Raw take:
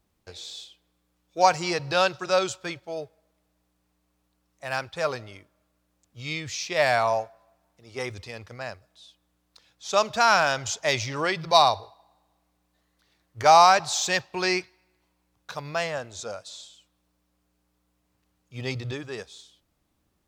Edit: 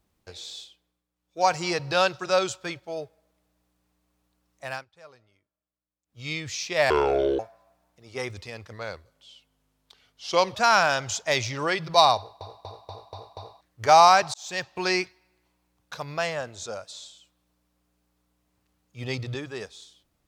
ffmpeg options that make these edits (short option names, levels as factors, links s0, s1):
-filter_complex "[0:a]asplit=16[s0][s1][s2][s3][s4][s5][s6][s7][s8][s9][s10][s11][s12][s13][s14][s15];[s0]atrim=end=1.05,asetpts=PTS-STARTPTS,afade=t=out:st=0.57:d=0.48:silence=0.251189[s16];[s1]atrim=start=1.05:end=1.16,asetpts=PTS-STARTPTS,volume=0.251[s17];[s2]atrim=start=1.16:end=4.85,asetpts=PTS-STARTPTS,afade=t=in:d=0.48:silence=0.251189,afade=t=out:st=3.49:d=0.2:silence=0.0749894[s18];[s3]atrim=start=4.85:end=6.06,asetpts=PTS-STARTPTS,volume=0.075[s19];[s4]atrim=start=6.06:end=6.904,asetpts=PTS-STARTPTS,afade=t=in:d=0.2:silence=0.0749894[s20];[s5]atrim=start=6.9:end=7.2,asetpts=PTS-STARTPTS,asetrate=26901,aresample=44100[s21];[s6]atrim=start=7.196:end=8.534[s22];[s7]atrim=start=8.53:end=10.12,asetpts=PTS-STARTPTS,asetrate=38367,aresample=44100[s23];[s8]atrim=start=10.116:end=11.982[s24];[s9]atrim=start=11.738:end=11.982[s25];[s10]atrim=start=11.738:end=11.982[s26];[s11]atrim=start=11.738:end=11.982[s27];[s12]atrim=start=11.738:end=11.982[s28];[s13]atrim=start=11.738:end=11.982[s29];[s14]atrim=start=13.178:end=13.91,asetpts=PTS-STARTPTS,afade=t=out:st=0.728:d=0.004:c=hsin[s30];[s15]atrim=start=13.91,asetpts=PTS-STARTPTS,afade=t=in:d=0.45[s31];[s16][s17][s18][s19][s20]concat=n=5:v=0:a=1[s32];[s32][s21]acrossfade=d=0.004:c1=hsin:c2=hsin[s33];[s33][s22]acrossfade=d=0.004:c1=hsin:c2=hsin[s34];[s34][s23]acrossfade=d=0.004:c1=hsin:c2=hsin[s35];[s35][s24]acrossfade=d=0.004:c1=hsin:c2=hsin[s36];[s36][s25]acrossfade=d=0.004:c1=hsin:c2=hsin[s37];[s37][s26]acrossfade=d=0.004:c1=hsin:c2=hsin[s38];[s38][s27]acrossfade=d=0.004:c1=hsin:c2=hsin[s39];[s39][s28]acrossfade=d=0.004:c1=hsin:c2=hsin[s40];[s40][s29]acrossfade=d=0.004:c1=hsin:c2=hsin[s41];[s30][s31]concat=n=2:v=0:a=1[s42];[s41][s42]acrossfade=d=0.004:c1=hsin:c2=hsin"